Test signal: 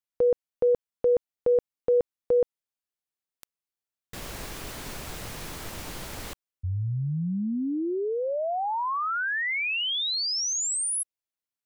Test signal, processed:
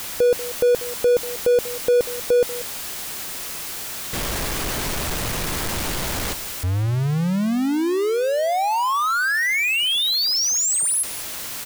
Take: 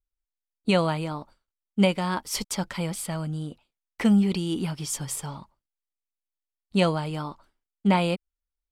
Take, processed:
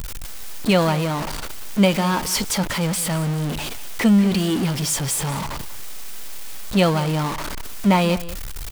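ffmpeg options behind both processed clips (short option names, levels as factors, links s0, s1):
-af "aeval=exprs='val(0)+0.5*0.0562*sgn(val(0))':c=same,aecho=1:1:189:0.158,volume=1.41"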